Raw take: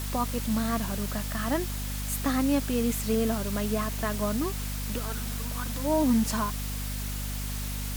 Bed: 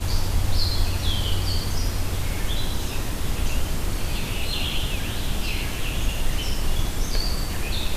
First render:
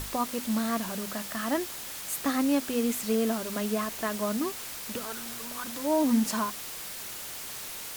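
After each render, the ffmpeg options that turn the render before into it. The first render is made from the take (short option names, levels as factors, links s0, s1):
-af "bandreject=f=50:t=h:w=6,bandreject=f=100:t=h:w=6,bandreject=f=150:t=h:w=6,bandreject=f=200:t=h:w=6,bandreject=f=250:t=h:w=6"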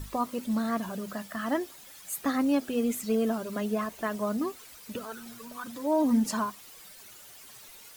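-af "afftdn=nr=13:nf=-39"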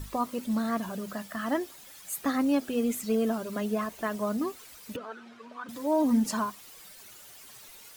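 -filter_complex "[0:a]asettb=1/sr,asplit=3[s0][s1][s2];[s0]atrim=end=4.964[s3];[s1]atrim=start=4.96:end=5.69,asetpts=PTS-STARTPTS,afade=t=in:d=0.004:c=qsin,afade=t=out:st=0.726:d=0.004:c=qsin,highpass=270,lowpass=2800[s4];[s2]atrim=start=5.686[s5];[s3][s4]acrossfade=d=0.004:c1=hsin:c2=qsin[s6];[s6][s5]acrossfade=d=0.004:c1=qsin:c2=hsin"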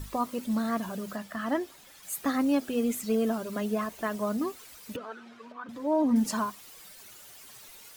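-filter_complex "[0:a]asettb=1/sr,asplit=3[s0][s1][s2];[s0]atrim=end=1.164[s3];[s1]atrim=start=1.16:end=2.03,asetpts=PTS-STARTPTS,afade=t=in:d=0.004:c=qsin,afade=t=out:st=0.866:d=0.004:c=qsin,highshelf=f=5700:g=-6.5[s4];[s2]atrim=start=2.026[s5];[s3][s4]acrossfade=d=0.004:c1=hsin:c2=qsin[s6];[s6][s5]acrossfade=d=0.004:c1=qsin:c2=hsin,asettb=1/sr,asplit=3[s7][s8][s9];[s7]atrim=end=5.524[s10];[s8]atrim=start=5.52:end=6.16,asetpts=PTS-STARTPTS,afade=t=in:d=0.004:c=qsin,afade=t=out:st=0.636:d=0.004:c=qsin,aemphasis=mode=reproduction:type=75kf[s11];[s9]atrim=start=6.156[s12];[s10][s11]acrossfade=d=0.004:c1=hsin:c2=qsin[s13];[s13][s12]acrossfade=d=0.004:c1=qsin:c2=hsin"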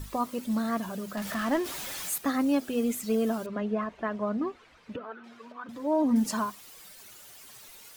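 -filter_complex "[0:a]asettb=1/sr,asplit=3[s0][s1][s2];[s0]atrim=end=1.174[s3];[s1]atrim=start=1.17:end=2.18,asetpts=PTS-STARTPTS,afade=t=in:d=0.004:c=qsin,afade=t=out:st=1.006:d=0.004:c=qsin,aeval=exprs='val(0)+0.5*0.0237*sgn(val(0))':c=same[s4];[s2]atrim=start=2.176[s5];[s3][s4]acrossfade=d=0.004:c1=hsin:c2=qsin[s6];[s6][s5]acrossfade=d=0.004:c1=qsin:c2=hsin,asettb=1/sr,asplit=3[s7][s8][s9];[s7]atrim=end=3.464[s10];[s8]atrim=start=3.46:end=5.24,asetpts=PTS-STARTPTS,afade=t=in:d=0.004:c=qsin,afade=t=out:st=1.776:d=0.004:c=qsin,lowpass=2400[s11];[s9]atrim=start=5.236[s12];[s10][s11]acrossfade=d=0.004:c1=hsin:c2=qsin[s13];[s13][s12]acrossfade=d=0.004:c1=qsin:c2=hsin"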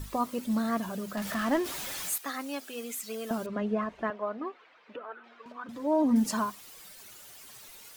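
-filter_complex "[0:a]asettb=1/sr,asplit=3[s0][s1][s2];[s0]atrim=end=2.164[s3];[s1]atrim=start=2.16:end=3.31,asetpts=PTS-STARTPTS,afade=t=in:d=0.004:c=qsin,afade=t=out:st=1.146:d=0.004:c=qsin,highpass=f=1300:p=1[s4];[s2]atrim=start=3.306[s5];[s3][s4]acrossfade=d=0.004:c1=hsin:c2=qsin[s6];[s6][s5]acrossfade=d=0.004:c1=qsin:c2=hsin,asettb=1/sr,asplit=3[s7][s8][s9];[s7]atrim=end=4.104[s10];[s8]atrim=start=4.1:end=5.46,asetpts=PTS-STARTPTS,afade=t=in:d=0.004:c=qsin,afade=t=out:st=1.356:d=0.004:c=qsin,highpass=450,lowpass=3400[s11];[s9]atrim=start=5.456[s12];[s10][s11]acrossfade=d=0.004:c1=hsin:c2=qsin[s13];[s13][s12]acrossfade=d=0.004:c1=qsin:c2=hsin"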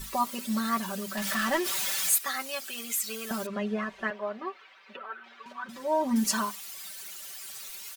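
-af "tiltshelf=f=970:g=-6,aecho=1:1:5.2:0.82"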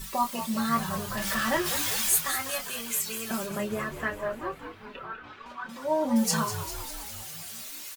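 -filter_complex "[0:a]asplit=2[s0][s1];[s1]adelay=26,volume=0.422[s2];[s0][s2]amix=inputs=2:normalize=0,asplit=9[s3][s4][s5][s6][s7][s8][s9][s10][s11];[s4]adelay=199,afreqshift=-65,volume=0.299[s12];[s5]adelay=398,afreqshift=-130,volume=0.191[s13];[s6]adelay=597,afreqshift=-195,volume=0.122[s14];[s7]adelay=796,afreqshift=-260,volume=0.0785[s15];[s8]adelay=995,afreqshift=-325,volume=0.0501[s16];[s9]adelay=1194,afreqshift=-390,volume=0.032[s17];[s10]adelay=1393,afreqshift=-455,volume=0.0204[s18];[s11]adelay=1592,afreqshift=-520,volume=0.0132[s19];[s3][s12][s13][s14][s15][s16][s17][s18][s19]amix=inputs=9:normalize=0"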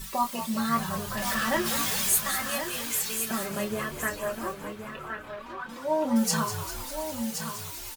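-af "aecho=1:1:1071:0.376"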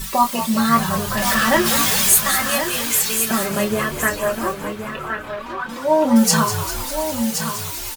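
-af "volume=3.35,alimiter=limit=0.794:level=0:latency=1"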